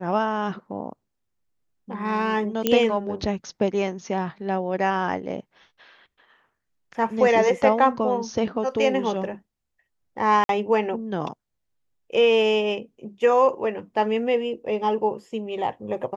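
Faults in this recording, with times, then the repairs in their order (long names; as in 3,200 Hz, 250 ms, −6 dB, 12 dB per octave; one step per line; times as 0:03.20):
0:02.67: click −6 dBFS
0:10.44–0:10.49: drop-out 52 ms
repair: click removal
repair the gap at 0:10.44, 52 ms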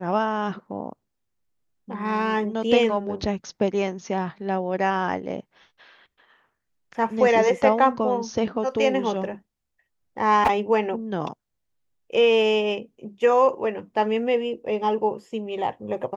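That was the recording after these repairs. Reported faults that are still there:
none of them is left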